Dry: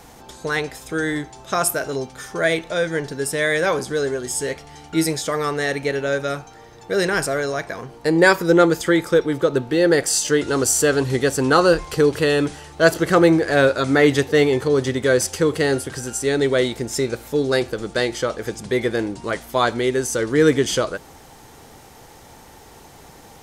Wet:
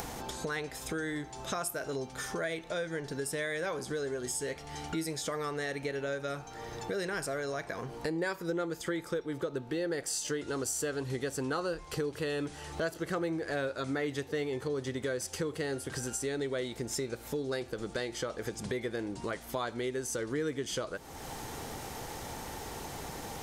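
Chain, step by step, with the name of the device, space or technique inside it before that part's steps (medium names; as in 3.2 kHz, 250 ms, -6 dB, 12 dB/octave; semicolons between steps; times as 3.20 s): upward and downward compression (upward compressor, threshold -20 dBFS; compression 4:1, threshold -23 dBFS, peak gain reduction 12.5 dB); trim -9 dB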